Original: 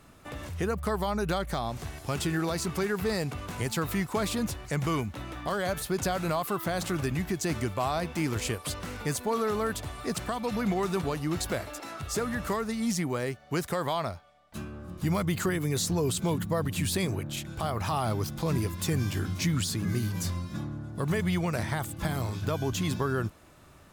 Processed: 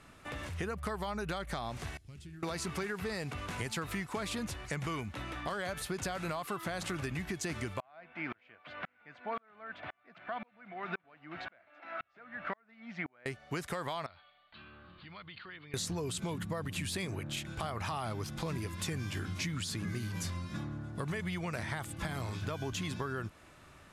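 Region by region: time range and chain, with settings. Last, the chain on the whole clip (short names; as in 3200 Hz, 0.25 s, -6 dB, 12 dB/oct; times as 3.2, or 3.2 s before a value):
1.97–2.43 passive tone stack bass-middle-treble 10-0-1 + Doppler distortion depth 0.11 ms
7.8–13.26 speaker cabinet 200–3200 Hz, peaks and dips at 420 Hz -6 dB, 680 Hz +9 dB, 1500 Hz +8 dB, 2200 Hz +5 dB + dB-ramp tremolo swelling 1.9 Hz, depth 40 dB
14.06–15.74 tilt shelf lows -7.5 dB, about 1400 Hz + compressor 3:1, threshold -47 dBFS + rippled Chebyshev low-pass 4500 Hz, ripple 3 dB
whole clip: LPF 12000 Hz 24 dB/oct; bell 2100 Hz +6 dB 1.8 oct; compressor, threshold -30 dBFS; gain -3.5 dB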